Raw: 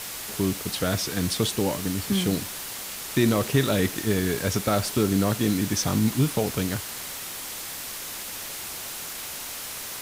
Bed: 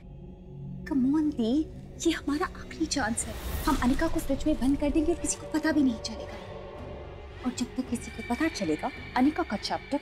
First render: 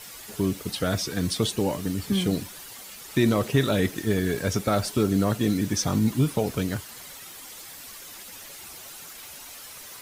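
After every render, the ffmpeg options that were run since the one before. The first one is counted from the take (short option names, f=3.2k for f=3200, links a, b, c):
-af "afftdn=nr=10:nf=-36"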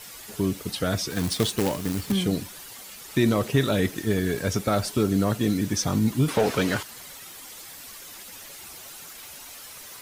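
-filter_complex "[0:a]asettb=1/sr,asplit=3[a][b][c];[a]atrim=end=1.104[d];[b]atrim=start=1.1:end=2.12,asetpts=PTS-STARTPTS,afade=t=in:d=0.004:c=qsin,afade=t=out:st=1.016:d=0.004:c=qsin,acrusher=bits=2:mode=log:mix=0:aa=0.000001[e];[c]atrim=start=2.116[f];[d][e]acrossfade=d=0.004:c1=hsin:c2=qsin[g];[g][f]acrossfade=d=0.004:c1=qsin:c2=hsin,asettb=1/sr,asplit=3[h][i][j];[h]atrim=end=6.284[k];[i]atrim=start=6.28:end=6.83,asetpts=PTS-STARTPTS,afade=t=in:d=0.004:c=qsin,afade=t=out:st=0.546:d=0.004:c=qsin,asplit=2[l][m];[m]highpass=f=720:p=1,volume=20dB,asoftclip=type=tanh:threshold=-11dB[n];[l][n]amix=inputs=2:normalize=0,lowpass=f=2.5k:p=1,volume=-6dB[o];[j]atrim=start=6.826[p];[k][o]acrossfade=d=0.004:c1=hsin:c2=qsin[q];[q][p]acrossfade=d=0.004:c1=qsin:c2=hsin"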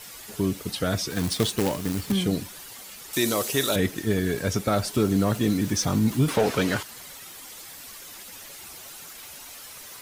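-filter_complex "[0:a]asettb=1/sr,asplit=3[a][b][c];[a]atrim=end=3.134[d];[b]atrim=start=3.13:end=3.76,asetpts=PTS-STARTPTS,afade=t=in:d=0.004:c=qsin,afade=t=out:st=0.626:d=0.004:c=qsin,bass=f=250:g=-12,treble=f=4k:g=12[e];[c]atrim=start=3.756[f];[d][e]acrossfade=d=0.004:c1=hsin:c2=qsin[g];[g][f]acrossfade=d=0.004:c1=qsin:c2=hsin,asettb=1/sr,asplit=3[h][i][j];[h]atrim=end=4.944[k];[i]atrim=start=4.94:end=6.36,asetpts=PTS-STARTPTS,afade=t=in:d=0.004:c=qsin,afade=t=out:st=1.416:d=0.004:c=qsin,aeval=exprs='val(0)+0.5*0.0119*sgn(val(0))':c=same[l];[j]atrim=start=6.356[m];[k][l]acrossfade=d=0.004:c1=hsin:c2=qsin[n];[n][m]acrossfade=d=0.004:c1=qsin:c2=hsin"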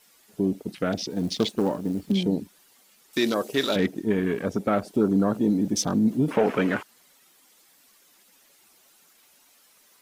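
-af "afwtdn=0.0224,lowshelf=f=150:t=q:w=1.5:g=-9"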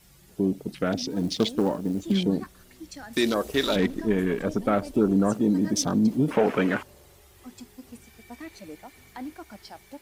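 -filter_complex "[1:a]volume=-13.5dB[a];[0:a][a]amix=inputs=2:normalize=0"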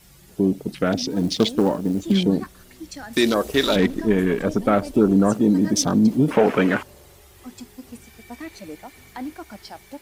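-af "volume=5dB"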